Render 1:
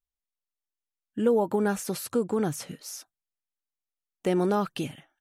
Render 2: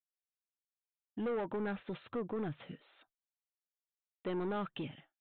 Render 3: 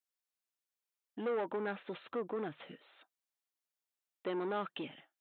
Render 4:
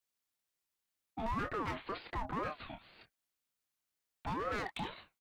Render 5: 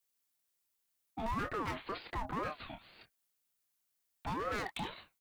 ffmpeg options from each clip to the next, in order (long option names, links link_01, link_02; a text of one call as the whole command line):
ffmpeg -i in.wav -af "agate=range=-33dB:threshold=-50dB:ratio=3:detection=peak,aresample=8000,asoftclip=type=tanh:threshold=-25dB,aresample=44100,volume=-7dB" out.wav
ffmpeg -i in.wav -af "highpass=300,volume=2dB" out.wav
ffmpeg -i in.wav -filter_complex "[0:a]asoftclip=type=hard:threshold=-38dB,asplit=2[link_01][link_02];[link_02]adelay=27,volume=-7dB[link_03];[link_01][link_03]amix=inputs=2:normalize=0,aeval=exprs='val(0)*sin(2*PI*680*n/s+680*0.35/2*sin(2*PI*2*n/s))':channel_layout=same,volume=6dB" out.wav
ffmpeg -i in.wav -af "highshelf=frequency=6800:gain=8.5" out.wav